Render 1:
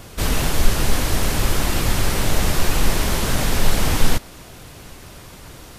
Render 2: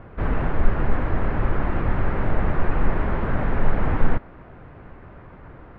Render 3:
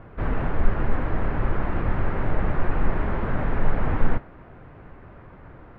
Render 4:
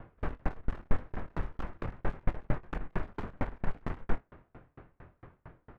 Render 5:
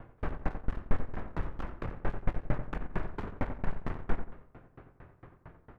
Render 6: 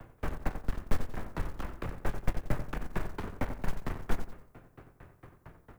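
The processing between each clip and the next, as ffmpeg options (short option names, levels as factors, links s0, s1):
-af "lowpass=f=1800:w=0.5412,lowpass=f=1800:w=1.3066,volume=0.794"
-af "flanger=delay=6.1:depth=4.7:regen=-80:speed=0.83:shape=triangular,volume=1.33"
-af "aeval=exprs='clip(val(0),-1,0.0355)':c=same,aecho=1:1:24|48:0.398|0.158,aeval=exprs='val(0)*pow(10,-37*if(lt(mod(4.4*n/s,1),2*abs(4.4)/1000),1-mod(4.4*n/s,1)/(2*abs(4.4)/1000),(mod(4.4*n/s,1)-2*abs(4.4)/1000)/(1-2*abs(4.4)/1000))/20)':c=same,volume=0.841"
-filter_complex "[0:a]asplit=2[s0][s1];[s1]adelay=89,lowpass=f=1600:p=1,volume=0.398,asplit=2[s2][s3];[s3]adelay=89,lowpass=f=1600:p=1,volume=0.34,asplit=2[s4][s5];[s5]adelay=89,lowpass=f=1600:p=1,volume=0.34,asplit=2[s6][s7];[s7]adelay=89,lowpass=f=1600:p=1,volume=0.34[s8];[s0][s2][s4][s6][s8]amix=inputs=5:normalize=0"
-filter_complex "[0:a]acrossover=split=130|310|1300[s0][s1][s2][s3];[s3]crystalizer=i=2.5:c=0[s4];[s0][s1][s2][s4]amix=inputs=4:normalize=0,acrusher=bits=7:mode=log:mix=0:aa=0.000001"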